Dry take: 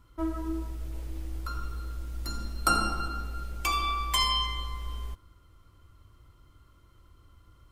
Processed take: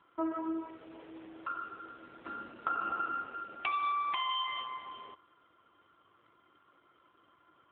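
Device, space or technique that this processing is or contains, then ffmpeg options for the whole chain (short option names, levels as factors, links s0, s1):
voicemail: -af "highpass=380,lowpass=3000,acompressor=threshold=0.0224:ratio=8,volume=1.68" -ar 8000 -c:a libopencore_amrnb -b:a 7400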